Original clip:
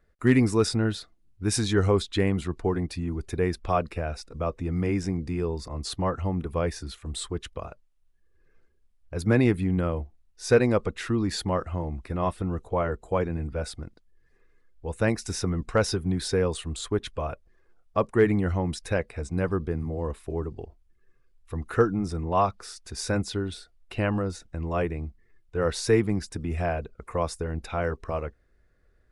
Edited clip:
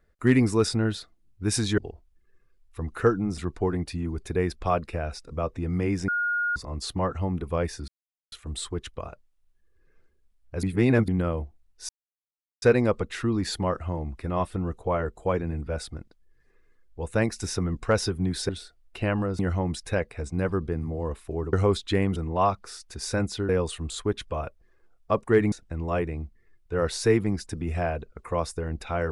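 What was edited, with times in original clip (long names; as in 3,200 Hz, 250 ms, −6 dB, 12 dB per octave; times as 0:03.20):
0:01.78–0:02.41: swap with 0:20.52–0:22.12
0:05.11–0:05.59: beep over 1,430 Hz −23 dBFS
0:06.91: splice in silence 0.44 s
0:09.22–0:09.67: reverse
0:10.48: splice in silence 0.73 s
0:16.35–0:18.38: swap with 0:23.45–0:24.35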